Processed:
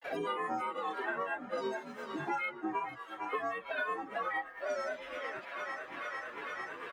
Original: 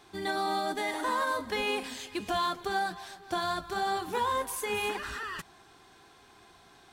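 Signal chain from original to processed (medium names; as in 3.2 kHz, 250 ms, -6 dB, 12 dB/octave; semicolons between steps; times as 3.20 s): frequency axis rescaled in octaves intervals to 127%; harmonic-percussive split percussive -12 dB; three-band isolator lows -21 dB, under 220 Hz, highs -21 dB, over 2.2 kHz; granulator 195 ms, grains 8.9 per s, spray 21 ms, pitch spread up and down by 7 st; harmony voices -7 st -16 dB, +3 st -14 dB; thinning echo 450 ms, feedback 78%, high-pass 750 Hz, level -16 dB; three bands compressed up and down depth 100%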